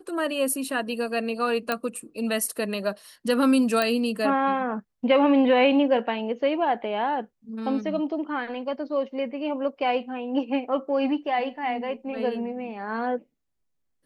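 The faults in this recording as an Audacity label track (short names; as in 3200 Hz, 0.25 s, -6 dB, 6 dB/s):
1.720000	1.720000	pop -11 dBFS
3.820000	3.820000	pop -10 dBFS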